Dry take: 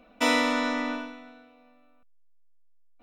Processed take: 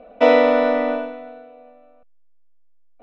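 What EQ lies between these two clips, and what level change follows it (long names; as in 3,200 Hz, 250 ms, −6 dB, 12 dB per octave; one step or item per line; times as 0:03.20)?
high-frequency loss of the air 310 metres
flat-topped bell 560 Hz +12 dB 1 octave
+5.5 dB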